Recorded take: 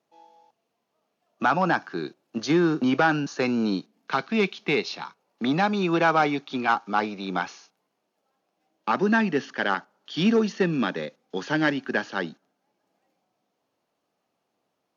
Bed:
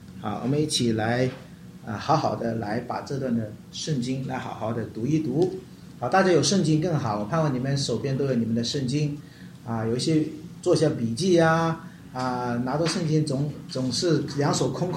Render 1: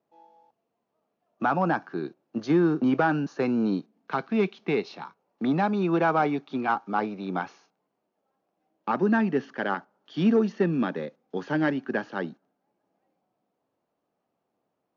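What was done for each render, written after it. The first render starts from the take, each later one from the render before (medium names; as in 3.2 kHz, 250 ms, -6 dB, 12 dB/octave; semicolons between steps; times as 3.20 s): low-pass 5.5 kHz 12 dB/octave; peaking EQ 4.3 kHz -10.5 dB 2.8 oct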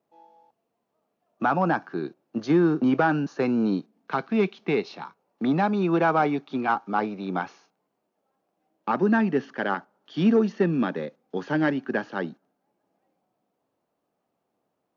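trim +1.5 dB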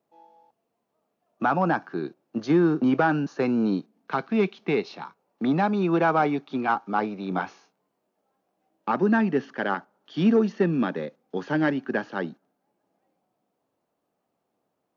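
7.29–8.90 s: doubling 21 ms -7 dB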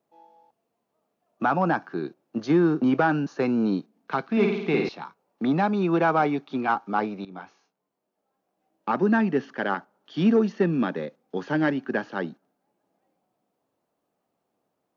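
4.27–4.89 s: flutter echo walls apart 9 m, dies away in 0.87 s; 7.25–8.96 s: fade in, from -15.5 dB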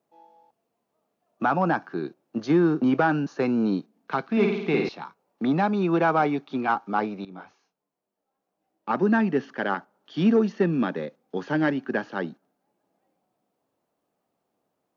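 7.35–8.89 s: detune thickener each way 23 cents -> 41 cents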